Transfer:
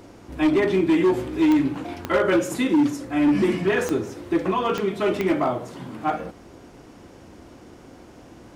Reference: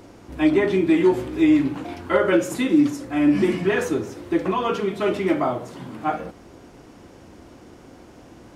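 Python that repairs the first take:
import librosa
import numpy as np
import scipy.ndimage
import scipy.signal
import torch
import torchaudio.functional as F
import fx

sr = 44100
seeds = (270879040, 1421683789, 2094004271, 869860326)

y = fx.fix_declip(x, sr, threshold_db=-14.0)
y = fx.fix_declick_ar(y, sr, threshold=10.0)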